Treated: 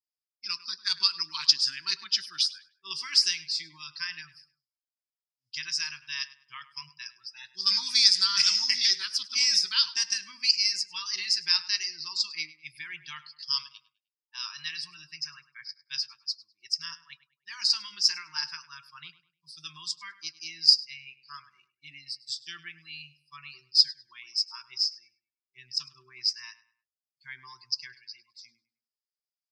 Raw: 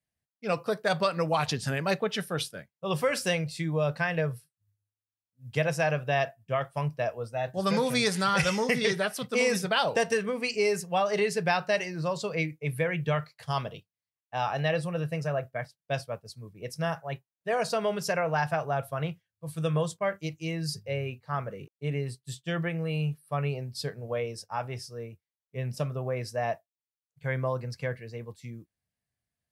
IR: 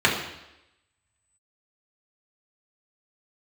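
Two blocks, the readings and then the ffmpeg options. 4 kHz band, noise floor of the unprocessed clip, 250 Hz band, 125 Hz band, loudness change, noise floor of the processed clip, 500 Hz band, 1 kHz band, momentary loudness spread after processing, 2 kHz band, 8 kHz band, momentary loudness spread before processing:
+13.0 dB, under -85 dBFS, under -25 dB, under -30 dB, +4.0 dB, under -85 dBFS, under -35 dB, -15.0 dB, 21 LU, -5.5 dB, +6.5 dB, 13 LU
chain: -filter_complex "[0:a]afftfilt=real='re*(1-between(b*sr/4096,390,890))':imag='im*(1-between(b*sr/4096,390,890))':win_size=4096:overlap=0.75,lowpass=f=5k:t=q:w=11,aderivative,afftdn=nr=18:nf=-54,asplit=2[a][b];[b]adelay=102,lowpass=f=2.8k:p=1,volume=-15.5dB,asplit=2[c][d];[d]adelay=102,lowpass=f=2.8k:p=1,volume=0.37,asplit=2[e][f];[f]adelay=102,lowpass=f=2.8k:p=1,volume=0.37[g];[c][e][g]amix=inputs=3:normalize=0[h];[a][h]amix=inputs=2:normalize=0,volume=4dB"

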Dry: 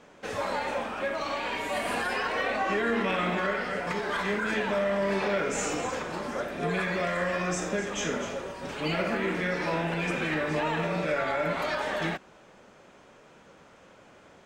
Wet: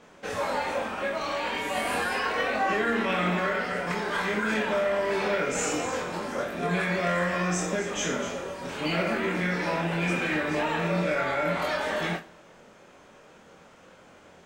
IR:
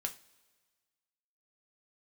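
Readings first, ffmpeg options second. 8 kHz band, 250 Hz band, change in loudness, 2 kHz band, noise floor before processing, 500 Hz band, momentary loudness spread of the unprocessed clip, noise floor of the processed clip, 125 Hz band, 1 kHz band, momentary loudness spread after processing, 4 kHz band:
+3.0 dB, +2.0 dB, +1.5 dB, +2.0 dB, -55 dBFS, +1.0 dB, 6 LU, -53 dBFS, +2.5 dB, +1.5 dB, 6 LU, +2.0 dB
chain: -filter_complex "[0:a]asplit=2[a][b];[1:a]atrim=start_sample=2205,highshelf=f=8.4k:g=10,adelay=23[c];[b][c]afir=irnorm=-1:irlink=0,volume=-4dB[d];[a][d]amix=inputs=2:normalize=0"

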